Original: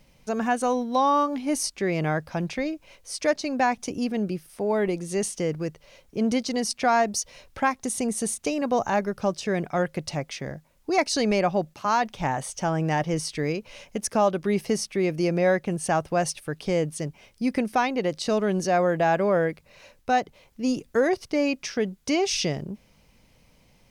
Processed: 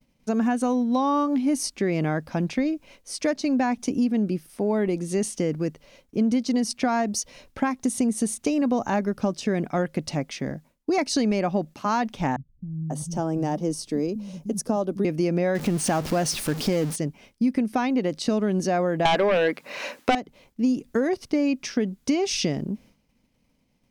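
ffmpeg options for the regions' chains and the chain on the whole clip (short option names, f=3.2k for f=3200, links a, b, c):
-filter_complex "[0:a]asettb=1/sr,asplit=3[a][b][c];[a]atrim=end=12.364[d];[b]atrim=start=12.36:end=15.05,asetpts=PTS-STARTPTS,afade=t=in:d=0.004:c=qsin,afade=t=out:st=2.686:d=0.004:c=qsin,equalizer=f=2.1k:t=o:w=1.5:g=-14.5,acrossover=split=160[e][f];[f]adelay=540[g];[e][g]amix=inputs=2:normalize=0,atrim=end_sample=118629[h];[c]atrim=start=15.046[i];[d][h]acrossfade=d=0.004:c1=hsin:c2=qsin[j];[j][i]acrossfade=d=0.004:c1=qsin:c2=hsin,asettb=1/sr,asplit=3[k][l][m];[k]atrim=end=15.554[n];[l]atrim=start=15.55:end=16.96,asetpts=PTS-STARTPTS,afade=t=in:d=0.004:c=qsin,afade=t=out:st=1.406:d=0.004:c=qsin,aeval=exprs='val(0)+0.5*0.0376*sgn(val(0))':c=same,equalizer=f=5.1k:t=o:w=0.87:g=3.5[o];[m]atrim=start=16.956[p];[n][o]acrossfade=d=0.004:c1=hsin:c2=qsin[q];[q][p]acrossfade=d=0.004:c1=qsin:c2=hsin,asettb=1/sr,asplit=3[r][s][t];[r]atrim=end=19.054[u];[s]atrim=start=19.05:end=20.15,asetpts=PTS-STARTPTS,afade=t=in:d=0.004:c=qsin,afade=t=out:st=1.096:d=0.004:c=qsin,highpass=290,equalizer=f=1.5k:w=0.5:g=6.5,aeval=exprs='0.501*sin(PI/2*2.82*val(0)/0.501)':c=same[v];[t]atrim=start=20.146[w];[u][v]acrossfade=d=0.004:c1=hsin:c2=qsin[x];[x][w]acrossfade=d=0.004:c1=qsin:c2=hsin,agate=range=-33dB:threshold=-49dB:ratio=3:detection=peak,equalizer=f=250:w=1.7:g=10,acompressor=threshold=-19dB:ratio=6"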